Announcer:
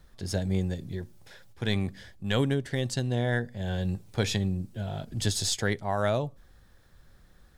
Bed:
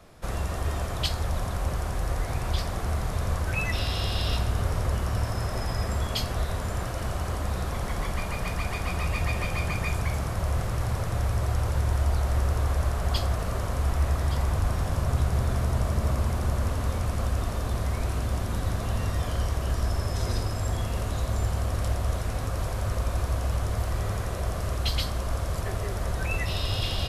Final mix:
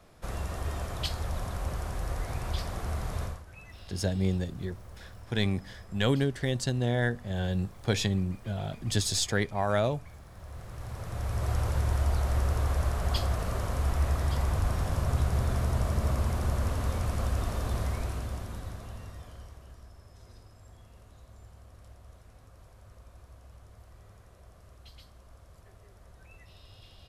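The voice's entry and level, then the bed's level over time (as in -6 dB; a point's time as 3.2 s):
3.70 s, 0.0 dB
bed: 3.24 s -5 dB
3.45 s -21.5 dB
10.24 s -21.5 dB
11.51 s -2.5 dB
17.82 s -2.5 dB
19.92 s -25 dB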